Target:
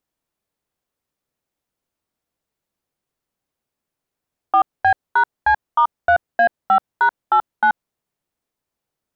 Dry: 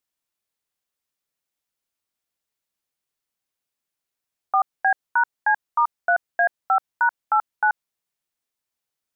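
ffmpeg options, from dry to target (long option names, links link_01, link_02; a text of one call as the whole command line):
ffmpeg -i in.wav -af "asoftclip=type=tanh:threshold=-12.5dB,tiltshelf=frequency=1200:gain=6.5,volume=5dB" out.wav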